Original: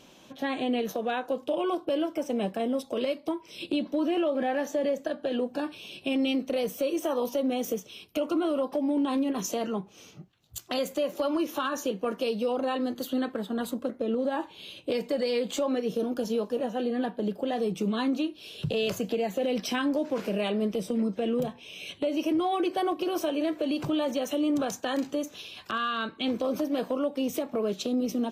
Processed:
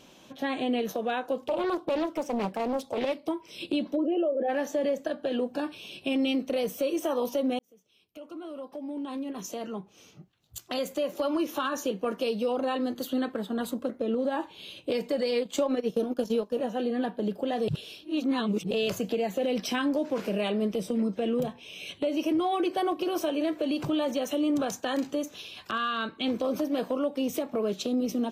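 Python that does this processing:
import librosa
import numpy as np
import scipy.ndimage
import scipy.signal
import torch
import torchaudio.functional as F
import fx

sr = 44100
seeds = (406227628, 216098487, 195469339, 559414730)

y = fx.doppler_dist(x, sr, depth_ms=0.51, at=(1.47, 3.26))
y = fx.envelope_sharpen(y, sr, power=2.0, at=(3.95, 4.48), fade=0.02)
y = fx.transient(y, sr, attack_db=4, sustain_db=-11, at=(15.31, 16.53))
y = fx.edit(y, sr, fx.fade_in_span(start_s=7.59, length_s=3.85),
    fx.reverse_span(start_s=17.68, length_s=1.03), tone=tone)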